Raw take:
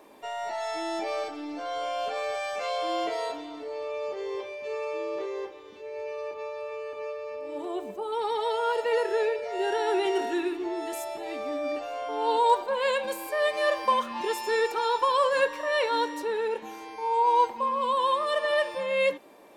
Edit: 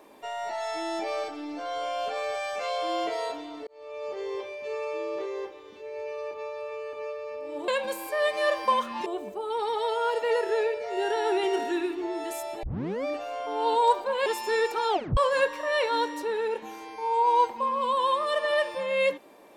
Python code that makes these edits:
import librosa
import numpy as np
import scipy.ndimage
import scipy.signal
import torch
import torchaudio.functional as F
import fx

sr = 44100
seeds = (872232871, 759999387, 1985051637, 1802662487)

y = fx.edit(x, sr, fx.fade_in_span(start_s=3.67, length_s=0.5),
    fx.tape_start(start_s=11.25, length_s=0.42),
    fx.move(start_s=12.88, length_s=1.38, to_s=7.68),
    fx.tape_stop(start_s=14.89, length_s=0.28), tone=tone)